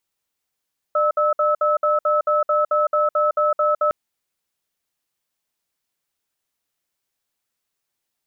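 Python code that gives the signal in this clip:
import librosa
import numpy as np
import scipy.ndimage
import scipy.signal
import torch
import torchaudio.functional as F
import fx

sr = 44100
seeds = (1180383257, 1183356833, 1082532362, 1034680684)

y = fx.cadence(sr, length_s=2.96, low_hz=601.0, high_hz=1300.0, on_s=0.16, off_s=0.06, level_db=-18.0)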